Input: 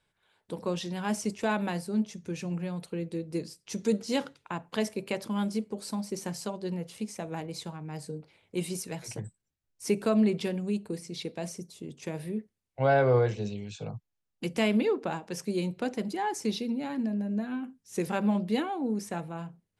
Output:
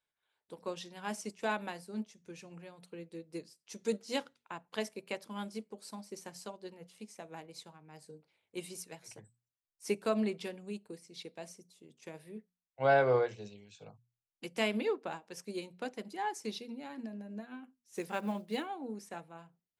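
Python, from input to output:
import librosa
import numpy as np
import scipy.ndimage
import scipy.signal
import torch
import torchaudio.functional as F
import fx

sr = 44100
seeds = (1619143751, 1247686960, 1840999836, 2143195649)

y = fx.block_float(x, sr, bits=7, at=(17.95, 18.68))
y = fx.low_shelf(y, sr, hz=290.0, db=-10.5)
y = fx.hum_notches(y, sr, base_hz=60, count=4)
y = fx.upward_expand(y, sr, threshold_db=-48.0, expansion=1.5)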